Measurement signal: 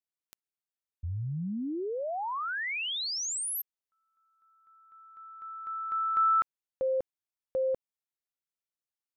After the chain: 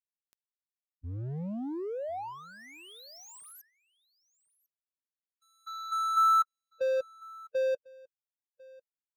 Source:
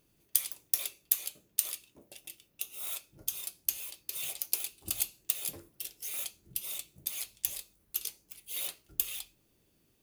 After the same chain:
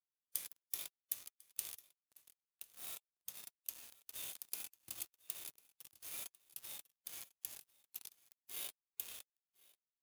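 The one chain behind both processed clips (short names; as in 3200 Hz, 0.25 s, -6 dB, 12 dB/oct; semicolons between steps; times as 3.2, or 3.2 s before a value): HPF 66 Hz 12 dB/oct; crossover distortion -39.5 dBFS; echo 1.048 s -24 dB; harmonic-percussive split percussive -16 dB; gain +3 dB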